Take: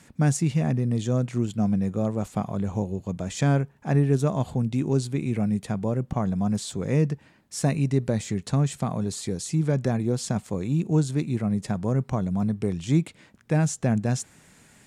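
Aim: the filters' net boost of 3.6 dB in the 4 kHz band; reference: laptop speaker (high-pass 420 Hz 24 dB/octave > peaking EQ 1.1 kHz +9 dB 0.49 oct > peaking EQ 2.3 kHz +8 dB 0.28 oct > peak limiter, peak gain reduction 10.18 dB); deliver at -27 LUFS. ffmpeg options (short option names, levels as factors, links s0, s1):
-af "highpass=f=420:w=0.5412,highpass=f=420:w=1.3066,equalizer=f=1100:t=o:w=0.49:g=9,equalizer=f=2300:t=o:w=0.28:g=8,equalizer=f=4000:t=o:g=4,volume=2.51,alimiter=limit=0.188:level=0:latency=1"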